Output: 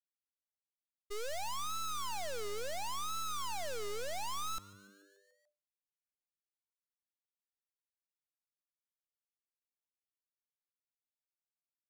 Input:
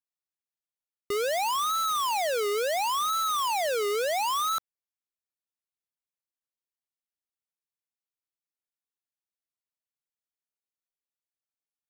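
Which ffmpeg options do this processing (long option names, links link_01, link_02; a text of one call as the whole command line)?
ffmpeg -i in.wav -filter_complex "[0:a]agate=range=-33dB:threshold=-21dB:ratio=3:detection=peak,equalizer=frequency=6500:width_type=o:width=1.5:gain=5,aeval=exprs='max(val(0),0)':channel_layout=same,asplit=2[link_01][link_02];[link_02]asplit=6[link_03][link_04][link_05][link_06][link_07][link_08];[link_03]adelay=145,afreqshift=99,volume=-20.5dB[link_09];[link_04]adelay=290,afreqshift=198,volume=-24.4dB[link_10];[link_05]adelay=435,afreqshift=297,volume=-28.3dB[link_11];[link_06]adelay=580,afreqshift=396,volume=-32.1dB[link_12];[link_07]adelay=725,afreqshift=495,volume=-36dB[link_13];[link_08]adelay=870,afreqshift=594,volume=-39.9dB[link_14];[link_09][link_10][link_11][link_12][link_13][link_14]amix=inputs=6:normalize=0[link_15];[link_01][link_15]amix=inputs=2:normalize=0,volume=4dB" out.wav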